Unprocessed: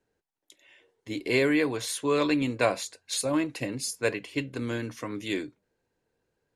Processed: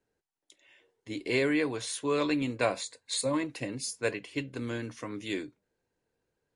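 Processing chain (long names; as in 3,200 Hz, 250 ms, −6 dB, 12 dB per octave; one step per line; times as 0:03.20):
0:02.80–0:03.43: EQ curve with evenly spaced ripples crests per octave 1, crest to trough 8 dB
level −3 dB
MP3 56 kbit/s 24,000 Hz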